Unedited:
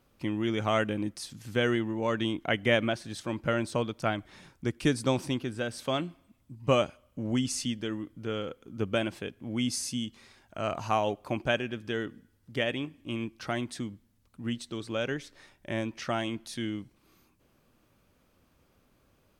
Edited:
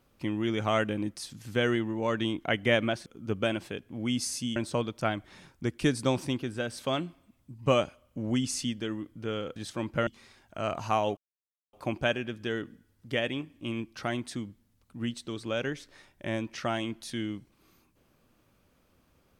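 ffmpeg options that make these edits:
-filter_complex "[0:a]asplit=6[s0][s1][s2][s3][s4][s5];[s0]atrim=end=3.062[s6];[s1]atrim=start=8.568:end=10.072[s7];[s2]atrim=start=3.568:end=8.572[s8];[s3]atrim=start=3.058:end=3.572[s9];[s4]atrim=start=10.068:end=11.17,asetpts=PTS-STARTPTS,afade=t=out:st=1.098:d=0.004:c=hsin,apad=pad_dur=0.56[s10];[s5]atrim=start=11.17,asetpts=PTS-STARTPTS,afade=t=in:d=0.004:c=hsin[s11];[s6][s7]acrossfade=d=0.004:c1=hsin:c2=hsin[s12];[s12][s8]acrossfade=d=0.004:c1=hsin:c2=hsin[s13];[s13][s9]acrossfade=d=0.004:c1=hsin:c2=hsin[s14];[s10][s11]concat=n=2:v=0:a=1[s15];[s14][s15]acrossfade=d=0.004:c1=hsin:c2=hsin"

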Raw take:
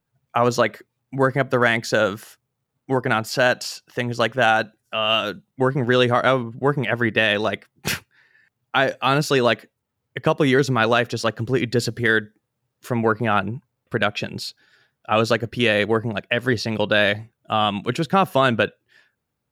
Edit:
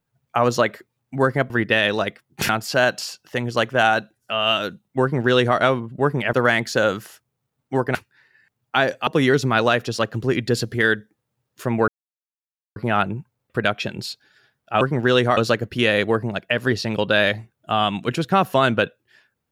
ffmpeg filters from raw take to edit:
-filter_complex "[0:a]asplit=9[s0][s1][s2][s3][s4][s5][s6][s7][s8];[s0]atrim=end=1.502[s9];[s1]atrim=start=6.958:end=7.952[s10];[s2]atrim=start=3.118:end=6.962[s11];[s3]atrim=start=1.498:end=3.122[s12];[s4]atrim=start=7.948:end=9.072[s13];[s5]atrim=start=10.318:end=13.13,asetpts=PTS-STARTPTS,afade=t=out:st=2.808:d=0.004:c=hsin,apad=pad_dur=0.88[s14];[s6]atrim=start=13.13:end=15.182,asetpts=PTS-STARTPTS,afade=t=in:d=0.004:c=hsin[s15];[s7]atrim=start=5.648:end=6.212[s16];[s8]atrim=start=15.178[s17];[s9][s10]acrossfade=d=0.004:c1=hsin:c2=hsin[s18];[s18][s11]acrossfade=d=0.004:c1=hsin:c2=hsin[s19];[s19][s12]acrossfade=d=0.004:c1=hsin:c2=hsin[s20];[s20][s13]acrossfade=d=0.004:c1=hsin:c2=hsin[s21];[s14][s15]concat=n=2:v=0:a=1[s22];[s21][s22]acrossfade=d=0.004:c1=hsin:c2=hsin[s23];[s23][s16]acrossfade=d=0.004:c1=hsin:c2=hsin[s24];[s24][s17]acrossfade=d=0.004:c1=hsin:c2=hsin"

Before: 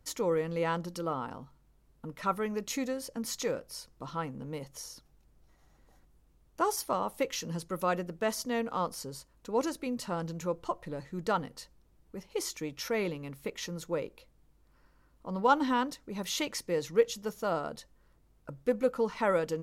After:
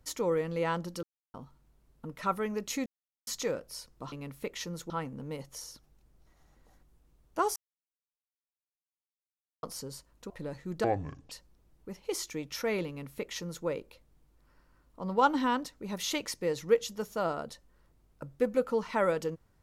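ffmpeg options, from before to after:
-filter_complex "[0:a]asplit=12[s0][s1][s2][s3][s4][s5][s6][s7][s8][s9][s10][s11];[s0]atrim=end=1.03,asetpts=PTS-STARTPTS,afade=t=out:st=1.026:d=0.004:c=hsin[s12];[s1]atrim=start=1.03:end=1.34,asetpts=PTS-STARTPTS,volume=0[s13];[s2]atrim=start=1.34:end=2.86,asetpts=PTS-STARTPTS,afade=t=in:d=0.004:c=hsin,afade=t=out:st=1.516:d=0.004:c=hsin[s14];[s3]atrim=start=2.86:end=3.27,asetpts=PTS-STARTPTS,volume=0[s15];[s4]atrim=start=3.27:end=4.122,asetpts=PTS-STARTPTS,afade=t=in:d=0.004:c=hsin[s16];[s5]atrim=start=13.138:end=13.922[s17];[s6]atrim=start=4.118:end=6.78,asetpts=PTS-STARTPTS,afade=t=out:st=2.658:d=0.004:c=hsin[s18];[s7]atrim=start=6.78:end=8.85,asetpts=PTS-STARTPTS,volume=0[s19];[s8]atrim=start=8.85:end=9.522,asetpts=PTS-STARTPTS,afade=t=in:d=0.004:c=hsin[s20];[s9]atrim=start=10.768:end=11.314[s21];[s10]atrim=start=11.31:end=11.58,asetpts=PTS-STARTPTS,asetrate=25137,aresample=44100,atrim=end_sample=20889,asetpts=PTS-STARTPTS[s22];[s11]atrim=start=11.576[s23];[s12][s13][s14][s15][s16]concat=n=5:v=0:a=1[s24];[s24][s17]acrossfade=d=0.004:c1=hsin:c2=hsin[s25];[s18][s19][s20]concat=n=3:v=0:a=1[s26];[s25][s26]acrossfade=d=0.004:c1=hsin:c2=hsin[s27];[s27][s21]acrossfade=d=0.004:c1=hsin:c2=hsin[s28];[s28][s22]acrossfade=d=0.004:c1=hsin:c2=hsin[s29];[s29][s23]acrossfade=d=0.004:c1=hsin:c2=hsin"

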